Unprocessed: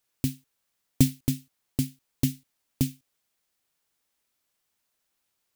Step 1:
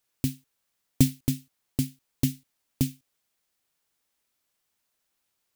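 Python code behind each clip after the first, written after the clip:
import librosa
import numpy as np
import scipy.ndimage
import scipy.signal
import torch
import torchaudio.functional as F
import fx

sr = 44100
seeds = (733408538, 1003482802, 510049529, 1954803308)

y = x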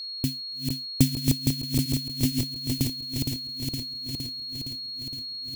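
y = fx.reverse_delay_fb(x, sr, ms=232, feedback_pct=83, wet_db=-3.5)
y = fx.dmg_crackle(y, sr, seeds[0], per_s=59.0, level_db=-48.0)
y = y + 10.0 ** (-33.0 / 20.0) * np.sin(2.0 * np.pi * 4300.0 * np.arange(len(y)) / sr)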